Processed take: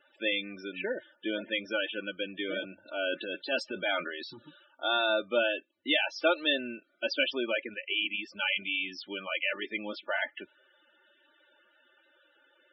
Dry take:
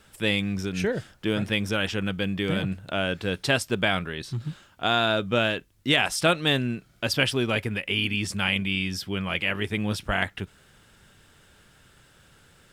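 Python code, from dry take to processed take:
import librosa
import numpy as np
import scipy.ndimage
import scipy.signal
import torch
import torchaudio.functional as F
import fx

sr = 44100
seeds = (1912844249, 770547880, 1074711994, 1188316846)

y = scipy.signal.sosfilt(scipy.signal.cheby1(2, 1.0, [410.0, 3800.0], 'bandpass', fs=sr, output='sos'), x)
y = y + 0.58 * np.pad(y, (int(3.4 * sr / 1000.0), 0))[:len(y)]
y = fx.transient(y, sr, attack_db=-7, sustain_db=8, at=(2.85, 4.38), fade=0.02)
y = fx.spec_topn(y, sr, count=32)
y = fx.upward_expand(y, sr, threshold_db=-35.0, expansion=1.5, at=(7.74, 8.35))
y = y * librosa.db_to_amplitude(-4.0)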